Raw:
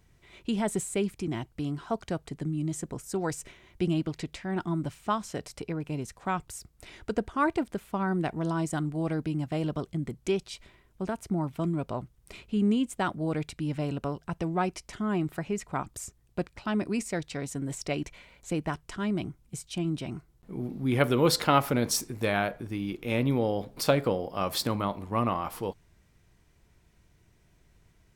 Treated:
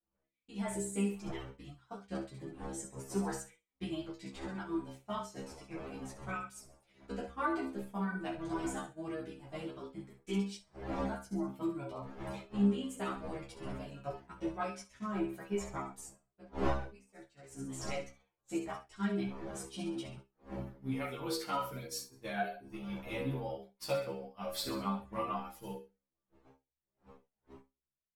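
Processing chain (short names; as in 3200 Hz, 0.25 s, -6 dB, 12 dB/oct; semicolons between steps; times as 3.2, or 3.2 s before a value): wind noise 570 Hz -34 dBFS; reverb removal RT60 0.74 s; in parallel at +1.5 dB: compressor, threshold -36 dBFS, peak gain reduction 24.5 dB; on the sum: notches 60/120/180/240/300/360/420/480/540/600 Hz; on a send: thin delay 66 ms, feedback 44%, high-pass 1500 Hz, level -7.5 dB; on the sum: AGC gain up to 10.5 dB; metallic resonator 65 Hz, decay 0.66 s, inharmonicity 0.002; expander -30 dBFS; ensemble effect; gain -5.5 dB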